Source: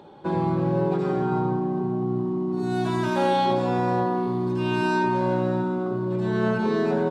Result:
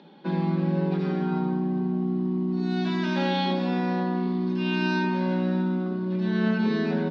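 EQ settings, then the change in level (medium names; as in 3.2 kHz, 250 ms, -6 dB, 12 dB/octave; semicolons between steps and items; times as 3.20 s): elliptic high-pass 170 Hz, stop band 40 dB; steep low-pass 5.3 kHz 36 dB/octave; high-order bell 670 Hz -10 dB 2.3 oct; +3.5 dB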